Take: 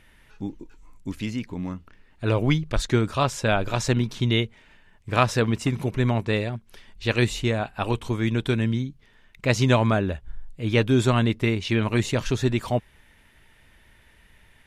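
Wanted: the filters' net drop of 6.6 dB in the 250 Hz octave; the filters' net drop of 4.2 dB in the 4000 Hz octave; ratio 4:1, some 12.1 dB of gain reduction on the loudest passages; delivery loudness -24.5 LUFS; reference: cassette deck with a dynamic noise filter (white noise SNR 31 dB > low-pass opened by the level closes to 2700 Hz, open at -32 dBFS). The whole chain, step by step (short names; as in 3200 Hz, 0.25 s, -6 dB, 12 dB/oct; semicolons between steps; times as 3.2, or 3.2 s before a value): bell 250 Hz -8.5 dB; bell 4000 Hz -5.5 dB; compressor 4:1, threshold -31 dBFS; white noise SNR 31 dB; low-pass opened by the level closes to 2700 Hz, open at -32 dBFS; gain +11.5 dB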